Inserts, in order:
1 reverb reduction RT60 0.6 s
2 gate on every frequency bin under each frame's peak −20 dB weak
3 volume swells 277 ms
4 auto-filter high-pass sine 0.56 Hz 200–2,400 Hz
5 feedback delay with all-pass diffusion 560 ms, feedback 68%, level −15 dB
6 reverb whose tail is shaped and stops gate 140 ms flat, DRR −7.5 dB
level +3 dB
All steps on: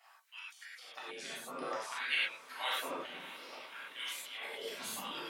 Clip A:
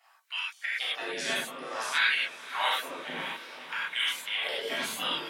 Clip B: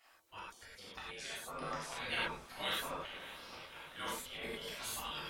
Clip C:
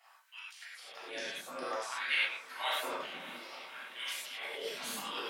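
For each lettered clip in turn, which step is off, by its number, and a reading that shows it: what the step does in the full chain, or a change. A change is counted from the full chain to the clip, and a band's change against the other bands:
3, change in crest factor −2.5 dB
4, change in crest factor −3.5 dB
1, 250 Hz band −2.0 dB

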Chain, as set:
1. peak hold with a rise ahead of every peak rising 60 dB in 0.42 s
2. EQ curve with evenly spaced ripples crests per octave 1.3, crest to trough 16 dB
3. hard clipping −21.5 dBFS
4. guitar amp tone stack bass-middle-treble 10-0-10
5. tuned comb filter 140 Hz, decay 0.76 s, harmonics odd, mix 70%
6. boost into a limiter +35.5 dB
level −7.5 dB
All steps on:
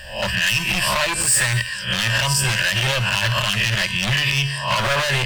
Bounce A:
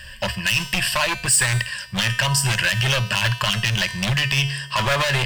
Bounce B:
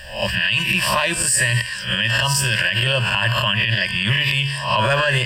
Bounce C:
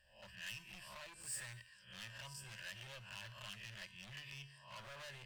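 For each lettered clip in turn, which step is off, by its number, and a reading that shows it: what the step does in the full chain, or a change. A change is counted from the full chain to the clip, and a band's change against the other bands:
1, 250 Hz band +2.0 dB
3, distortion level −7 dB
6, change in crest factor +5.5 dB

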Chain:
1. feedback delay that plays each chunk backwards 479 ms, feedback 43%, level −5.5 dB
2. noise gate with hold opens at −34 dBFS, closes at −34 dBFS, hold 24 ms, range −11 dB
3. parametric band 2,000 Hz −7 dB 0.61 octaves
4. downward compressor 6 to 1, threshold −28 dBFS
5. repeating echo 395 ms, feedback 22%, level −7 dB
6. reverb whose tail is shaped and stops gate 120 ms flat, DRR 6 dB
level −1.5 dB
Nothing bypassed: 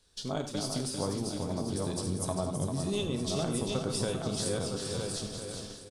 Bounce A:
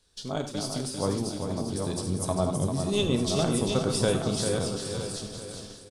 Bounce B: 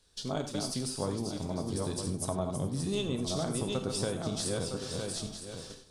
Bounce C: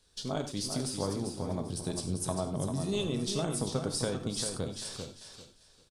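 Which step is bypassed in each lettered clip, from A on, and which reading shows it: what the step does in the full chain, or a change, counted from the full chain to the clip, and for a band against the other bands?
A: 4, average gain reduction 3.0 dB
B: 5, echo-to-direct ratio −3.0 dB to −6.0 dB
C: 1, change in crest factor +2.0 dB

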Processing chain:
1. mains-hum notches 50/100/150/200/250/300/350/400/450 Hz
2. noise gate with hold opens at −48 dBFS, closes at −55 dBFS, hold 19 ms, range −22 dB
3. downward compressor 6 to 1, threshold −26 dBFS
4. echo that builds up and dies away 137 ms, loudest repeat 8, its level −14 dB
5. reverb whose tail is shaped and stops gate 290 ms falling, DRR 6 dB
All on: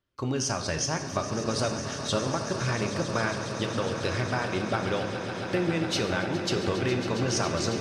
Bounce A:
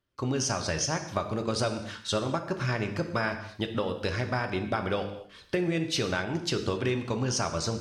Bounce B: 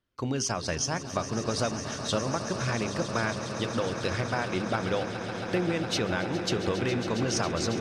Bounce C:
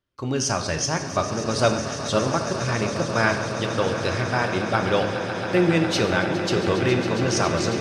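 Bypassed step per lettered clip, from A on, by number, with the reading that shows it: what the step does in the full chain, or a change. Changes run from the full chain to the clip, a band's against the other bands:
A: 4, echo-to-direct ratio 0.0 dB to −6.0 dB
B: 5, echo-to-direct ratio 0.0 dB to −2.5 dB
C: 3, average gain reduction 4.0 dB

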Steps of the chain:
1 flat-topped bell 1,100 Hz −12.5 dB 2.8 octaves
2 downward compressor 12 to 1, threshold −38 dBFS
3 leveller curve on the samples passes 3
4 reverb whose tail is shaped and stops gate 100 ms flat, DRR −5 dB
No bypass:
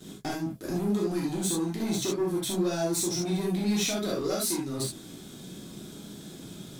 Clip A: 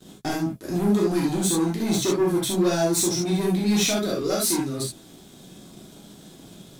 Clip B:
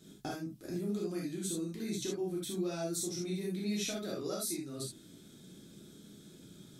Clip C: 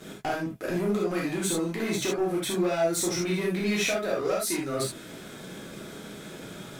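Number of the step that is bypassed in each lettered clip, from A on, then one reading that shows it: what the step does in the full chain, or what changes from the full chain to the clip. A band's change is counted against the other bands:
2, average gain reduction 4.0 dB
3, 1 kHz band −2.0 dB
1, 2 kHz band +8.5 dB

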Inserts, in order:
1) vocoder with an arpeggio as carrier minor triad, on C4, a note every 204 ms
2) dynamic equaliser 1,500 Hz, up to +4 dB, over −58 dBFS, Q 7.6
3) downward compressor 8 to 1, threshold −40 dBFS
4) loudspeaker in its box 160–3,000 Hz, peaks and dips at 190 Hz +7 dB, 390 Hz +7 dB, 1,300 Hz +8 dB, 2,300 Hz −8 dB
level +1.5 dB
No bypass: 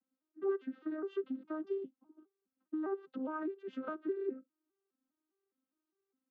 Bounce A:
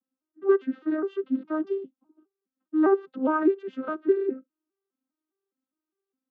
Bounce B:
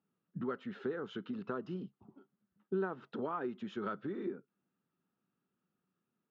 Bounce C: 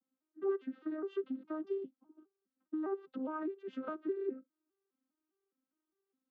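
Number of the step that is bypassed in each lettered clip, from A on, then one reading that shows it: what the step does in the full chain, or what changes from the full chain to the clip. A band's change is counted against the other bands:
3, average gain reduction 10.0 dB
1, 500 Hz band −5.5 dB
2, 2 kHz band −2.5 dB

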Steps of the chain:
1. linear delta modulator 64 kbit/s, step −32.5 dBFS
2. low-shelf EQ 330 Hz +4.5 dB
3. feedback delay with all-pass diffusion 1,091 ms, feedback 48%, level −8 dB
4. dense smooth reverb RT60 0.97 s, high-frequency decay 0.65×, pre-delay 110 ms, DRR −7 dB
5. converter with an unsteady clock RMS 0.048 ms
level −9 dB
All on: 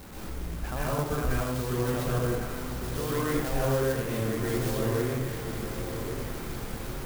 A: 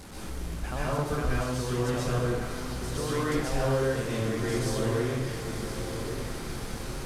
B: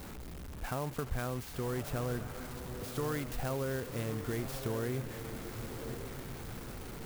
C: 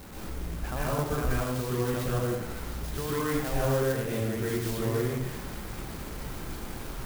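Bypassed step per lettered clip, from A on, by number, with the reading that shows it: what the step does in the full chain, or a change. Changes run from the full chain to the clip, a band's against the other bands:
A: 5, 4 kHz band +2.0 dB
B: 4, change in crest factor +2.5 dB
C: 3, change in momentary loudness spread +2 LU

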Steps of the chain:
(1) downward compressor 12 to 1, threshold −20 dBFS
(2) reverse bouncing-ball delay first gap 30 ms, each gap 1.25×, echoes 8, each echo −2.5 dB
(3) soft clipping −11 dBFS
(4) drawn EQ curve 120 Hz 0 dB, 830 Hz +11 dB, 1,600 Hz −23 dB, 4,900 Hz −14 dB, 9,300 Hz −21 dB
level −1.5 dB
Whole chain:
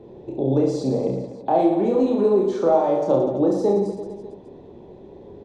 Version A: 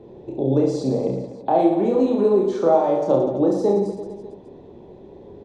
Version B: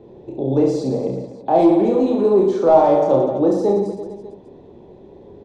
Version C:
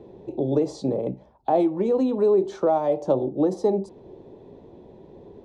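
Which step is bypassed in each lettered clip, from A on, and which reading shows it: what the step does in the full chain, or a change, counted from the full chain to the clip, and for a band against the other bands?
3, distortion level −24 dB
1, average gain reduction 2.0 dB
2, change in momentary loudness spread −4 LU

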